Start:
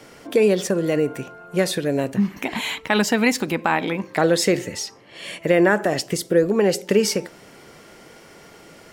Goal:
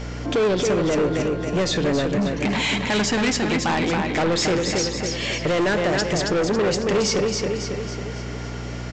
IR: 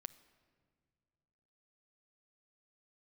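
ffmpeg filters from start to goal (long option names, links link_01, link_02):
-filter_complex "[0:a]asplit=2[link_01][link_02];[link_02]acompressor=threshold=-28dB:ratio=6,volume=2dB[link_03];[link_01][link_03]amix=inputs=2:normalize=0,aecho=1:1:275|550|825|1100|1375|1650:0.473|0.222|0.105|0.0491|0.0231|0.0109,aeval=exprs='val(0)+0.0282*(sin(2*PI*60*n/s)+sin(2*PI*2*60*n/s)/2+sin(2*PI*3*60*n/s)/3+sin(2*PI*4*60*n/s)/4+sin(2*PI*5*60*n/s)/5)':channel_layout=same,aresample=16000,asoftclip=type=tanh:threshold=-19dB,aresample=44100[link_04];[1:a]atrim=start_sample=2205[link_05];[link_04][link_05]afir=irnorm=-1:irlink=0,acontrast=73"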